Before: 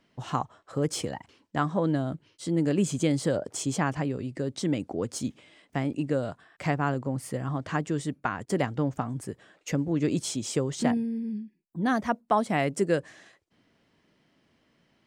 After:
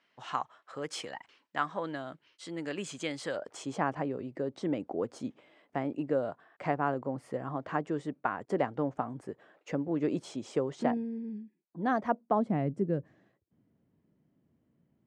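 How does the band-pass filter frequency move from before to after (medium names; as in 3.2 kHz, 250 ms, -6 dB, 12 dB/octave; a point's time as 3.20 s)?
band-pass filter, Q 0.69
3.35 s 1.9 kHz
3.84 s 670 Hz
12.01 s 670 Hz
12.74 s 130 Hz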